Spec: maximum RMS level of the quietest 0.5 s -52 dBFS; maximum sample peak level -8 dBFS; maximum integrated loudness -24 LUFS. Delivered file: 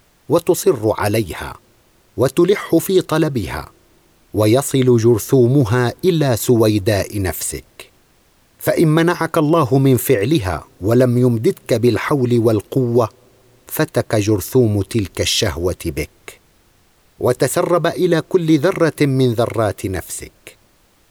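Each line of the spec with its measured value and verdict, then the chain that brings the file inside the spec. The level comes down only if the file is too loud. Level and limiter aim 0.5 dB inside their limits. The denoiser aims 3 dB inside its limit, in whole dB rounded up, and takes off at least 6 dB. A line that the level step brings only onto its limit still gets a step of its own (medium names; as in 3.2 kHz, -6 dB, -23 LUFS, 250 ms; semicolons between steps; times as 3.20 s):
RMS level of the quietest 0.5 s -55 dBFS: pass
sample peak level -3.5 dBFS: fail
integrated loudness -16.5 LUFS: fail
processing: trim -8 dB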